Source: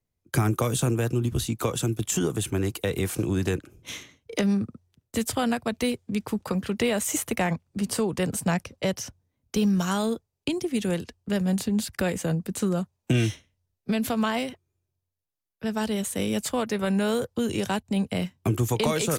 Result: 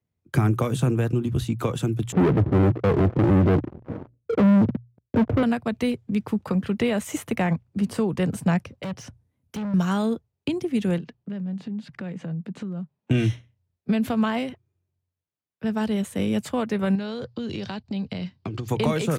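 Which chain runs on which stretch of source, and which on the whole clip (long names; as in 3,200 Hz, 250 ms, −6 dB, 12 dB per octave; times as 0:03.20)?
0:02.12–0:05.43: Butterworth low-pass 610 Hz + low-shelf EQ 400 Hz −4.5 dB + leveller curve on the samples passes 5
0:07.66–0:08.14: de-essing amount 45% + floating-point word with a short mantissa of 6 bits
0:08.83–0:09.74: treble cut that deepens with the level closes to 2,000 Hz, closed at −19.5 dBFS + parametric band 11,000 Hz +12.5 dB 0.81 octaves + gain into a clipping stage and back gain 30.5 dB
0:10.98–0:13.11: low-pass filter 4,400 Hz + low shelf with overshoot 120 Hz −8.5 dB, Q 3 + downward compressor 4 to 1, threshold −35 dBFS
0:16.95–0:18.68: low-pass with resonance 4,600 Hz, resonance Q 5.9 + downward compressor 12 to 1, threshold −28 dBFS
whole clip: high-pass filter 85 Hz; bass and treble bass +6 dB, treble −10 dB; mains-hum notches 60/120 Hz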